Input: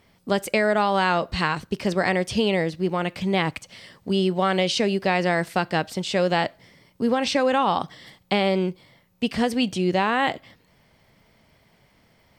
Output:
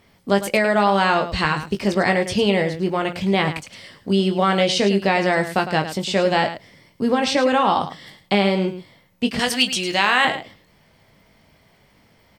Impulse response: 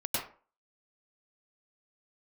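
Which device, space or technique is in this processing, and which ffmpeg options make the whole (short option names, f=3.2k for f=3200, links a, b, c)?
slapback doubling: -filter_complex "[0:a]asettb=1/sr,asplit=3[a][b][c];[a]atrim=end=9.394[d];[b]atrim=start=9.39:end=10.25,asetpts=PTS-STARTPTS,afade=t=in:d=0.004:c=qsin,afade=t=out:st=0.856:d=0.004:c=qsin,tiltshelf=f=940:g=-9.5[e];[c]atrim=start=10.246[f];[d][e]acrossfade=d=0.004:c1=hsin:c2=qsin[g];[g][f]acrossfade=d=0.004:c1=qsin:c2=hsin,asplit=3[h][i][j];[i]adelay=20,volume=-7dB[k];[j]adelay=106,volume=-11dB[l];[h][k][l]amix=inputs=3:normalize=0,volume=2.5dB"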